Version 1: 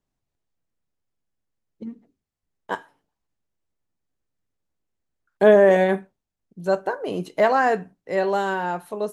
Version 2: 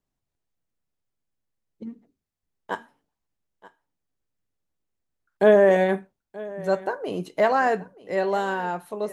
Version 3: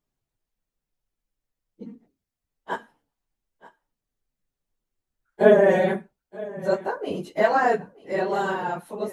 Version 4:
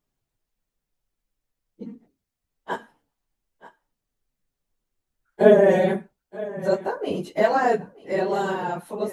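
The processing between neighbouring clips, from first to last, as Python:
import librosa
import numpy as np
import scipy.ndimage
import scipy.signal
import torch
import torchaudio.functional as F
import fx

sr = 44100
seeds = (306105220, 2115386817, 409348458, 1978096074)

y1 = x + 10.0 ** (-19.5 / 20.0) * np.pad(x, (int(929 * sr / 1000.0), 0))[:len(x)]
y1 = F.gain(torch.from_numpy(y1), -2.0).numpy()
y2 = fx.phase_scramble(y1, sr, seeds[0], window_ms=50)
y3 = fx.dynamic_eq(y2, sr, hz=1400.0, q=0.71, threshold_db=-31.0, ratio=4.0, max_db=-5)
y3 = F.gain(torch.from_numpy(y3), 2.5).numpy()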